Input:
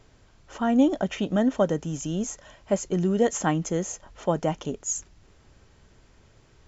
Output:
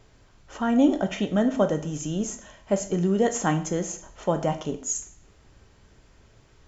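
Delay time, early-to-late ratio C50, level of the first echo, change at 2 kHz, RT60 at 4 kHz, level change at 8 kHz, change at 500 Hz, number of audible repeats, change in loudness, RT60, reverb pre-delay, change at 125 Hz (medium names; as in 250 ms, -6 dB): no echo, 12.5 dB, no echo, +1.0 dB, 0.50 s, no reading, +0.5 dB, no echo, +0.5 dB, 0.55 s, 6 ms, +0.5 dB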